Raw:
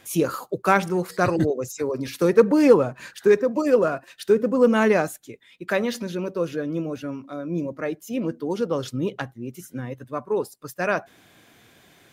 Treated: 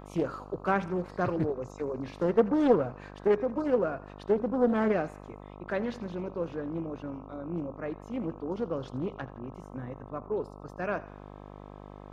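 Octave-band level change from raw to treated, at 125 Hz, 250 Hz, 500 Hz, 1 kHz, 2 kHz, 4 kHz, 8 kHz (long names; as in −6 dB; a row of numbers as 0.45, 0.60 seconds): −6.5 dB, −7.0 dB, −8.5 dB, −7.5 dB, −11.0 dB, below −10 dB, below −20 dB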